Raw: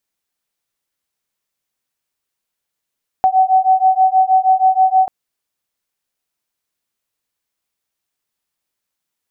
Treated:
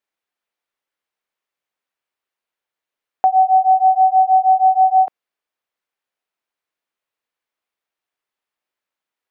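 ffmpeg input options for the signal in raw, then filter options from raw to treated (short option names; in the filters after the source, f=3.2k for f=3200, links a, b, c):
-f lavfi -i "aevalsrc='0.237*(sin(2*PI*752*t)+sin(2*PI*758.3*t))':d=1.84:s=44100"
-af "bass=f=250:g=-13,treble=f=4k:g=-13"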